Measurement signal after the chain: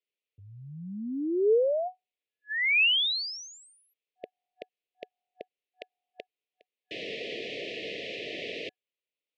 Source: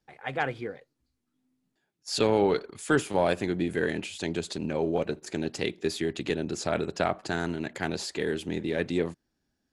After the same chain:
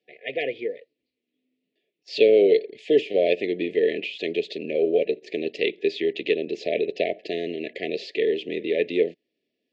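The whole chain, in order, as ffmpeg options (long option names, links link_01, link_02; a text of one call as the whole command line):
ffmpeg -i in.wav -af "highpass=420,equalizer=frequency=440:width_type=q:width=4:gain=7,equalizer=frequency=740:width_type=q:width=4:gain=-9,equalizer=frequency=1700:width_type=q:width=4:gain=-9,equalizer=frequency=2600:width_type=q:width=4:gain=4,lowpass=frequency=3600:width=0.5412,lowpass=frequency=3600:width=1.3066,afftfilt=real='re*(1-between(b*sr/4096,740,1700))':imag='im*(1-between(b*sr/4096,740,1700))':win_size=4096:overlap=0.75,volume=6.5dB" out.wav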